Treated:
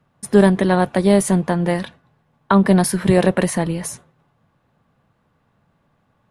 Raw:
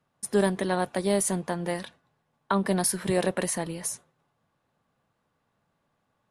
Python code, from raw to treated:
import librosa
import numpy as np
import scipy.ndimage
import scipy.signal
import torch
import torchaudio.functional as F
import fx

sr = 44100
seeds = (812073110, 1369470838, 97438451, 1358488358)

y = fx.bass_treble(x, sr, bass_db=6, treble_db=-7)
y = F.gain(torch.from_numpy(y), 9.0).numpy()